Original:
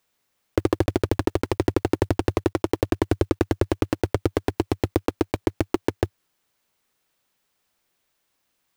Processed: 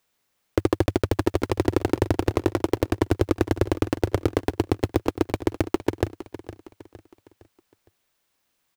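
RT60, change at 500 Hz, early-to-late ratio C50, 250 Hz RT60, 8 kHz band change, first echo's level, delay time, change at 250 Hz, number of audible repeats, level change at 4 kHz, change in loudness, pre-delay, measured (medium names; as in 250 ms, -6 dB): no reverb, 0.0 dB, no reverb, no reverb, 0.0 dB, -14.5 dB, 461 ms, 0.0 dB, 3, 0.0 dB, 0.0 dB, no reverb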